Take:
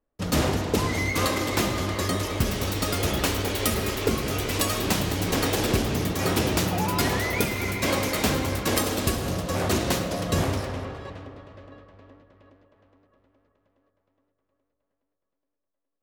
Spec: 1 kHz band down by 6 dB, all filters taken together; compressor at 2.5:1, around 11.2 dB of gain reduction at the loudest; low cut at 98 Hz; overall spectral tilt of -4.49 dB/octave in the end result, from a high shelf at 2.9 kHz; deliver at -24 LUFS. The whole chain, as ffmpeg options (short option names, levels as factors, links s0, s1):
-af "highpass=98,equalizer=f=1000:t=o:g=-7.5,highshelf=f=2900:g=-3,acompressor=threshold=0.0126:ratio=2.5,volume=4.47"